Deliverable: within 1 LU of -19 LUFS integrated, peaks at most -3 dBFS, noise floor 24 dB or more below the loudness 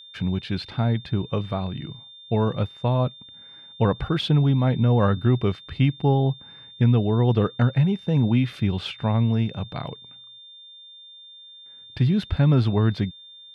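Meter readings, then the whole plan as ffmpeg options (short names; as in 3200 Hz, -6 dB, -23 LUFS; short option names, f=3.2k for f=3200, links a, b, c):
steady tone 3600 Hz; tone level -43 dBFS; loudness -23.0 LUFS; peak -8.0 dBFS; loudness target -19.0 LUFS
-> -af "bandreject=f=3.6k:w=30"
-af "volume=4dB"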